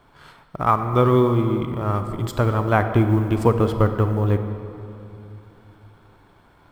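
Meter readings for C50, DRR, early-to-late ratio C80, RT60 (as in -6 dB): 8.0 dB, 7.5 dB, 9.0 dB, 2.8 s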